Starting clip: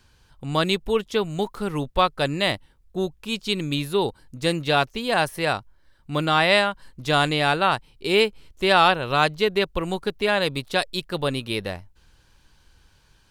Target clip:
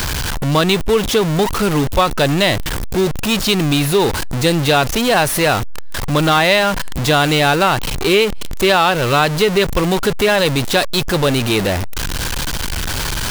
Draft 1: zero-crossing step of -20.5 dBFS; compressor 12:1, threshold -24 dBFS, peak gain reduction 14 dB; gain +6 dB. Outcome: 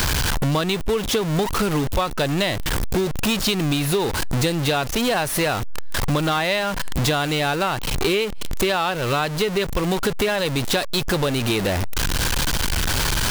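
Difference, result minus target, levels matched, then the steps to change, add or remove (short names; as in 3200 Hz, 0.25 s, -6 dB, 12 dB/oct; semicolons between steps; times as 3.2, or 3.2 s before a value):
compressor: peak gain reduction +8.5 dB
change: compressor 12:1, threshold -14.5 dBFS, peak gain reduction 5 dB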